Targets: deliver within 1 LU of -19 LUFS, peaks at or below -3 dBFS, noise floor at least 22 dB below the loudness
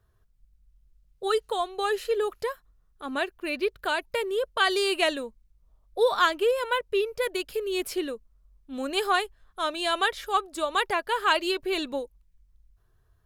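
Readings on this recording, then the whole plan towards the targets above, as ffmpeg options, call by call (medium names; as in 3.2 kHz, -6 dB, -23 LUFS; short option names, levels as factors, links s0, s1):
loudness -27.0 LUFS; peak level -8.5 dBFS; loudness target -19.0 LUFS
-> -af "volume=2.51,alimiter=limit=0.708:level=0:latency=1"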